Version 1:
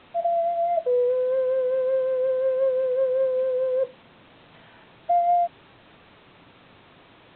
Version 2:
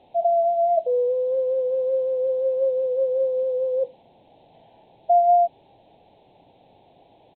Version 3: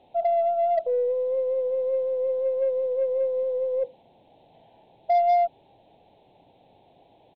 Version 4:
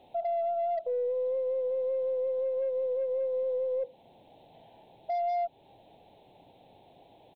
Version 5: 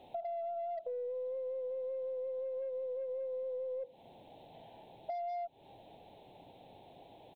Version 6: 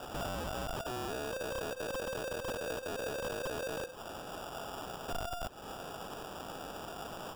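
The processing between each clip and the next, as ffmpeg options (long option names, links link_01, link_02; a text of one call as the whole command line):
ffmpeg -i in.wav -af "firequalizer=gain_entry='entry(240,0);entry(810,11);entry(1200,-24);entry(2300,-8);entry(4100,-1)':delay=0.05:min_phase=1,volume=-5dB" out.wav
ffmpeg -i in.wav -af "aeval=exprs='0.299*(cos(1*acos(clip(val(0)/0.299,-1,1)))-cos(1*PI/2))+0.0168*(cos(5*acos(clip(val(0)/0.299,-1,1)))-cos(5*PI/2))+0.0075*(cos(7*acos(clip(val(0)/0.299,-1,1)))-cos(7*PI/2))+0.00237*(cos(8*acos(clip(val(0)/0.299,-1,1)))-cos(8*PI/2))':channel_layout=same,volume=-3.5dB" out.wav
ffmpeg -i in.wav -af "crystalizer=i=1:c=0,alimiter=level_in=2dB:limit=-24dB:level=0:latency=1:release=261,volume=-2dB" out.wav
ffmpeg -i in.wav -af "acompressor=threshold=-39dB:ratio=6,volume=1dB" out.wav
ffmpeg -i in.wav -af "aemphasis=mode=production:type=riaa,acrusher=samples=21:mix=1:aa=0.000001,aeval=exprs='(mod(168*val(0)+1,2)-1)/168':channel_layout=same,volume=12.5dB" out.wav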